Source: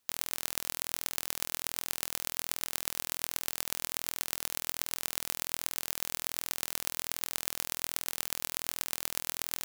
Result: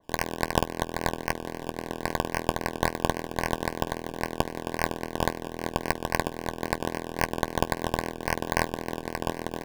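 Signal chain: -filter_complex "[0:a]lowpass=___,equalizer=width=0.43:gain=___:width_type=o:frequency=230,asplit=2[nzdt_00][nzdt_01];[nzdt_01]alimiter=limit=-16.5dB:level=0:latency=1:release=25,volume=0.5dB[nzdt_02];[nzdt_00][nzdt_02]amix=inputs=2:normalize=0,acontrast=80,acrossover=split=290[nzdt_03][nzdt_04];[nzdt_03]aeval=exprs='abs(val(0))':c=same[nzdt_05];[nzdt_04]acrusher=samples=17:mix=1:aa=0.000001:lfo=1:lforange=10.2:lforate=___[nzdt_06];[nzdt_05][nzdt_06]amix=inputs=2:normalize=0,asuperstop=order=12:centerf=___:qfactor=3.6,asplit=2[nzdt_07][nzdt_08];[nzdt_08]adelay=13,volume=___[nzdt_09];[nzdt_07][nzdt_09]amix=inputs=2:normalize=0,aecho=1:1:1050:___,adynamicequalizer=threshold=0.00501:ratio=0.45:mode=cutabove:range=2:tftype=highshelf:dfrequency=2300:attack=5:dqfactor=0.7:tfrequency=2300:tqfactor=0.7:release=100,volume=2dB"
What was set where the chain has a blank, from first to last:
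8200, 3.5, 3.7, 1300, -13.5dB, 0.0794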